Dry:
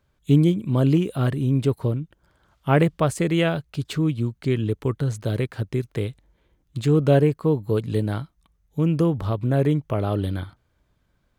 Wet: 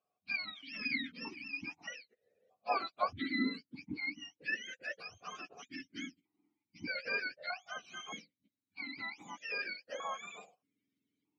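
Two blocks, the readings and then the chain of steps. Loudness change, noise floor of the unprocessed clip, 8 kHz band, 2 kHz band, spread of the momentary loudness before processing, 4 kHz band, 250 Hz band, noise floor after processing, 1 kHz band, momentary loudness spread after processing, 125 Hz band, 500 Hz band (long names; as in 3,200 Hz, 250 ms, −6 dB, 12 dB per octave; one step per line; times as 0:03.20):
−17.0 dB, −68 dBFS, −13.0 dB, −2.0 dB, 12 LU, −6.0 dB, −21.5 dB, below −85 dBFS, −9.0 dB, 12 LU, −40.0 dB, −23.5 dB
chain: frequency axis turned over on the octave scale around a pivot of 820 Hz
formant filter that steps through the vowels 1.6 Hz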